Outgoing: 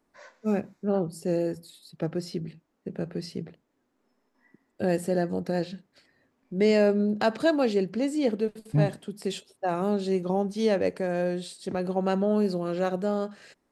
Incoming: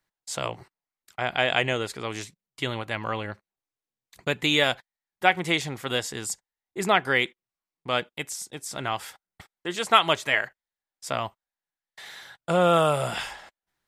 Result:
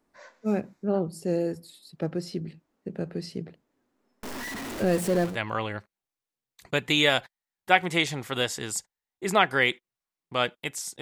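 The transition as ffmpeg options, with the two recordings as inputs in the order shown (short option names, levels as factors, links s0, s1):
-filter_complex "[0:a]asettb=1/sr,asplit=3[s0][s1][s2];[s0]atrim=end=4.234[s3];[s1]atrim=start=4.23:end=5.38,asetpts=PTS-STARTPTS,afade=t=in:d=0.004:c=qsin,afade=t=out:st=1.146:d=0.004:c=qsin,aeval=exprs='val(0)+0.5*0.0335*sgn(val(0))':c=same[s4];[s2]atrim=start=5.376[s5];[s3][s4]acrossfade=d=0.004:c1=hsin:c2=qsin[s6];[s6][s5]acrossfade=d=0.004:c1=qsin:c2=hsin,apad=whole_dur=11.01,atrim=end=11.01,atrim=end=5.38,asetpts=PTS-STARTPTS[s7];[1:a]atrim=start=2.78:end=8.55,asetpts=PTS-STARTPTS[s8];[s7][s8]acrossfade=d=0.14:c1=tri:c2=tri"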